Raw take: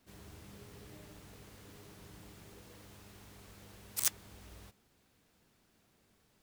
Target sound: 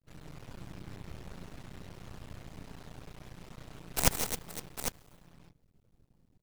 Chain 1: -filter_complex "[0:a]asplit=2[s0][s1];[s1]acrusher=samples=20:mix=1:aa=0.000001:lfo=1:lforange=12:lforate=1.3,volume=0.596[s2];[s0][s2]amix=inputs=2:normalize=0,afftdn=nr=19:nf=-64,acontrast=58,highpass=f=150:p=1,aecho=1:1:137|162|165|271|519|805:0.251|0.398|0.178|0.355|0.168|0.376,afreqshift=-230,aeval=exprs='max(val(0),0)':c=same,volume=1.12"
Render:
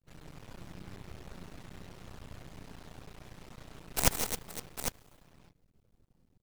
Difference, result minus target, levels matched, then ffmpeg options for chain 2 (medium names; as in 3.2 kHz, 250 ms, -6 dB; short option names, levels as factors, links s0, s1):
125 Hz band -3.5 dB
-filter_complex "[0:a]asplit=2[s0][s1];[s1]acrusher=samples=20:mix=1:aa=0.000001:lfo=1:lforange=12:lforate=1.3,volume=0.596[s2];[s0][s2]amix=inputs=2:normalize=0,afftdn=nr=19:nf=-64,acontrast=58,highpass=f=71:p=1,aecho=1:1:137|162|165|271|519|805:0.251|0.398|0.178|0.355|0.168|0.376,afreqshift=-230,aeval=exprs='max(val(0),0)':c=same,volume=1.12"